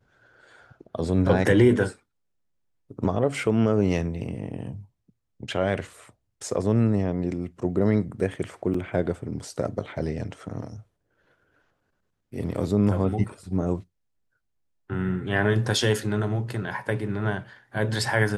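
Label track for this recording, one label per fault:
8.740000	8.740000	dropout 4.1 ms

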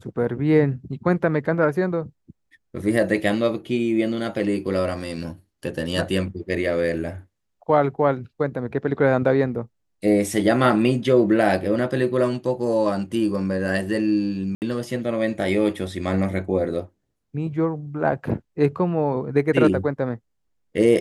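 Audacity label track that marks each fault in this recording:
14.550000	14.620000	dropout 69 ms

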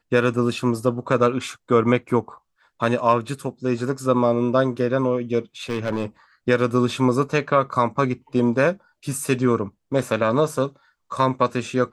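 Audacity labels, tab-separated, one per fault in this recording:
5.690000	6.050000	clipped -19 dBFS

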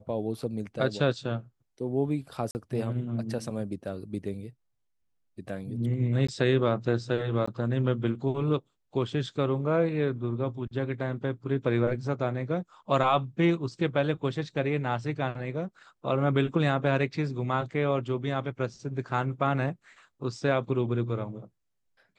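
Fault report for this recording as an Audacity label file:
2.510000	2.550000	dropout 39 ms
6.270000	6.290000	dropout 15 ms
7.460000	7.470000	dropout 15 ms

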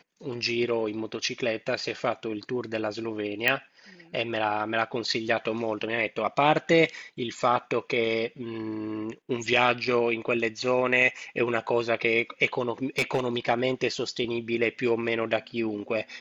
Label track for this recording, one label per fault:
3.480000	3.480000	pop -9 dBFS
12.980000	13.260000	clipped -19 dBFS

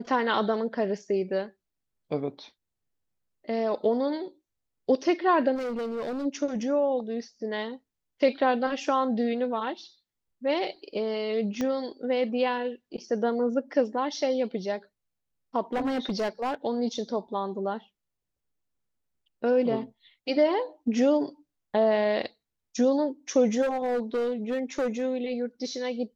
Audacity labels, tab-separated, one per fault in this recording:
5.550000	6.260000	clipped -28.5 dBFS
11.610000	11.610000	pop -17 dBFS
15.730000	16.550000	clipped -24 dBFS
23.610000	25.020000	clipped -23.5 dBFS

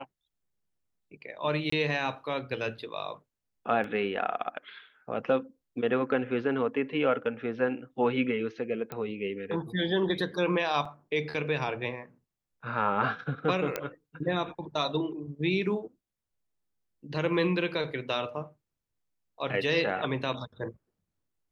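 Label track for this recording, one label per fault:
1.700000	1.720000	dropout 24 ms
3.840000	3.840000	dropout 2.1 ms
8.920000	8.920000	pop -22 dBFS
10.850000	10.850000	dropout 4.2 ms
13.760000	13.760000	pop -14 dBFS

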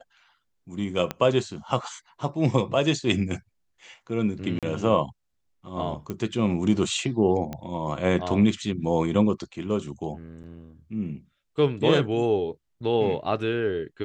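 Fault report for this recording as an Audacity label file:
1.110000	1.110000	pop -13 dBFS
4.590000	4.630000	dropout 37 ms
6.100000	6.100000	pop -19 dBFS
7.530000	7.530000	pop -19 dBFS
10.430000	10.440000	dropout 9.1 ms

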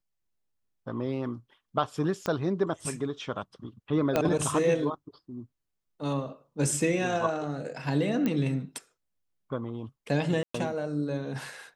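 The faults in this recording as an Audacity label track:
2.260000	2.260000	pop -17 dBFS
4.160000	4.160000	pop -11 dBFS
8.260000	8.260000	pop -16 dBFS
10.430000	10.540000	dropout 114 ms

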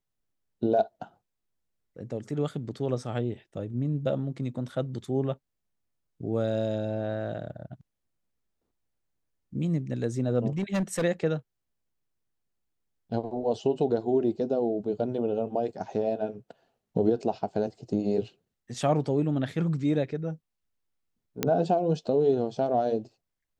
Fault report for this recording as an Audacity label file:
10.580000	11.040000	clipped -23.5 dBFS
21.430000	21.430000	pop -9 dBFS

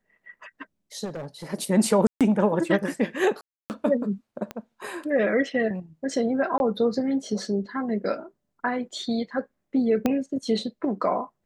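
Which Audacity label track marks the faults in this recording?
1.040000	1.540000	clipped -30 dBFS
2.070000	2.210000	dropout 137 ms
3.410000	3.700000	dropout 289 ms
4.510000	4.510000	pop -19 dBFS
6.580000	6.600000	dropout 21 ms
10.060000	10.060000	pop -10 dBFS

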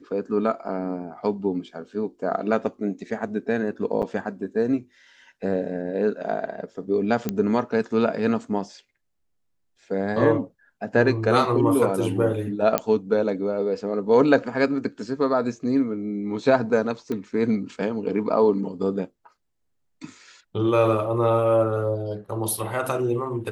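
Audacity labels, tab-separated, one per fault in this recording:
4.020000	4.030000	dropout 7.9 ms
7.290000	7.290000	pop -11 dBFS
12.780000	12.780000	pop -5 dBFS
17.120000	17.120000	pop -18 dBFS

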